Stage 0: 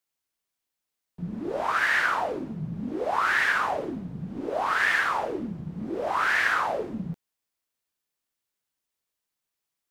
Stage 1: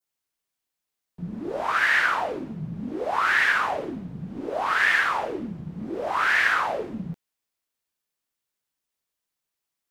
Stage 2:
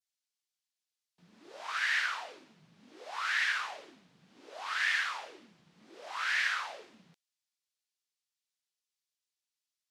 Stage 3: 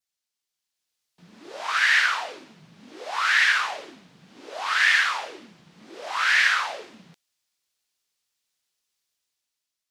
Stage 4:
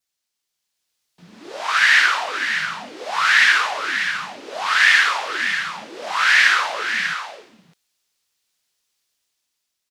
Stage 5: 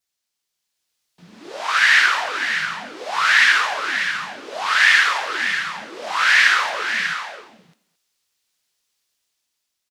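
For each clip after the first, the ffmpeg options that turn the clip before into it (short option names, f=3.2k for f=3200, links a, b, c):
-af "adynamicequalizer=threshold=0.0178:dfrequency=2500:dqfactor=0.83:tfrequency=2500:tqfactor=0.83:attack=5:release=100:ratio=0.375:range=2:mode=boostabove:tftype=bell"
-af "bandpass=f=4.9k:t=q:w=0.96:csg=0,volume=-1.5dB"
-af "dynaudnorm=f=180:g=9:m=7dB,volume=4dB"
-af "aecho=1:1:592:0.376,volume=5.5dB"
-filter_complex "[0:a]asplit=2[a][b];[b]adelay=220,highpass=300,lowpass=3.4k,asoftclip=type=hard:threshold=-11dB,volume=-15dB[c];[a][c]amix=inputs=2:normalize=0"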